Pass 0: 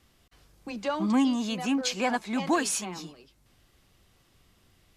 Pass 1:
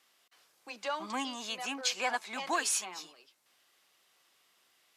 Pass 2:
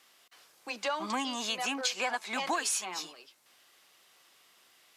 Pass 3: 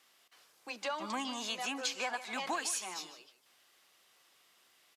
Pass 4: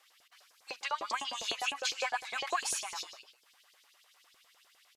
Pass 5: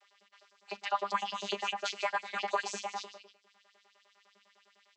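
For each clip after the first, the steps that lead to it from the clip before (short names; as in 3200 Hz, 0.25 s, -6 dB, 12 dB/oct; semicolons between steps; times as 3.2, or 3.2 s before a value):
Bessel high-pass 830 Hz, order 2; gain -1 dB
compressor 5:1, threshold -35 dBFS, peak gain reduction 8.5 dB; gain +6.5 dB
echo 0.152 s -14 dB; gain -4.5 dB
LFO high-pass saw up 9.9 Hz 420–5600 Hz
vocoder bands 32, saw 201 Hz; gain +2 dB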